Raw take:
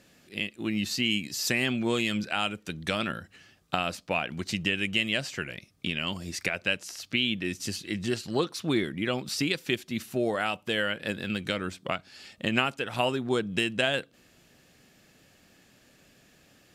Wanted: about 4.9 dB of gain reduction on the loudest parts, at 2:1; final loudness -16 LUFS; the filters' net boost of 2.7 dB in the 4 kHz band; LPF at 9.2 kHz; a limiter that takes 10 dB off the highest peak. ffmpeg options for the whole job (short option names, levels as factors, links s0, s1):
-af "lowpass=9200,equalizer=f=4000:t=o:g=4,acompressor=threshold=0.0355:ratio=2,volume=7.5,alimiter=limit=0.668:level=0:latency=1"